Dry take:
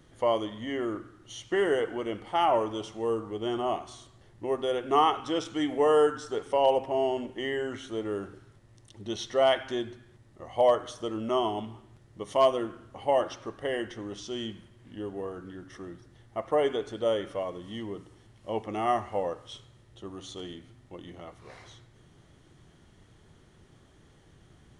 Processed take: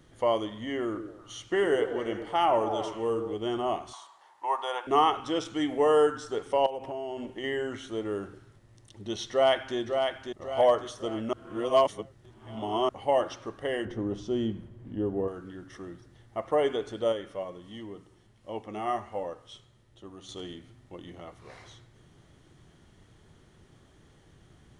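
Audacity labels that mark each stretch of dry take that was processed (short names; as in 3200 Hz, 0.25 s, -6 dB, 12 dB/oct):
0.860000	3.340000	delay with a stepping band-pass 0.109 s, band-pass from 360 Hz, each repeat 0.7 oct, level -6 dB
3.930000	4.870000	resonant high-pass 920 Hz, resonance Q 7.5
6.660000	7.440000	compressor, threshold -32 dBFS
9.310000	9.770000	echo throw 0.55 s, feedback 45%, level -5 dB
11.330000	12.890000	reverse
13.850000	15.280000	tilt shelf lows +8.5 dB, about 1100 Hz
17.120000	20.290000	flange 1.4 Hz, delay 3.1 ms, depth 2.7 ms, regen +74%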